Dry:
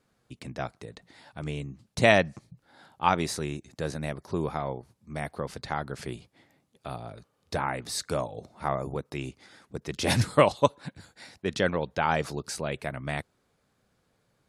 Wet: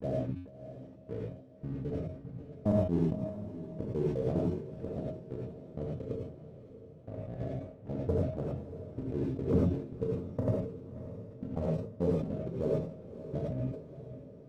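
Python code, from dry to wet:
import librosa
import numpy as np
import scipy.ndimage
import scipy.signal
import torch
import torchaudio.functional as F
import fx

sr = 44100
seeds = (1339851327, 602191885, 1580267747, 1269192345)

y = fx.block_reorder(x, sr, ms=136.0, group=5)
y = fx.env_lowpass_down(y, sr, base_hz=400.0, full_db=-25.5)
y = scipy.signal.sosfilt(scipy.signal.butter(8, 600.0, 'lowpass', fs=sr, output='sos'), y)
y = fx.leveller(y, sr, passes=2)
y = fx.step_gate(y, sr, bpm=130, pattern='xx...x.x.', floor_db=-60.0, edge_ms=4.5)
y = fx.comb_fb(y, sr, f0_hz=90.0, decay_s=0.25, harmonics='odd', damping=0.0, mix_pct=60)
y = fx.echo_diffused(y, sr, ms=593, feedback_pct=54, wet_db=-12.5)
y = fx.rev_gated(y, sr, seeds[0], gate_ms=130, shape='rising', drr_db=-3.0)
y = fx.sustainer(y, sr, db_per_s=93.0)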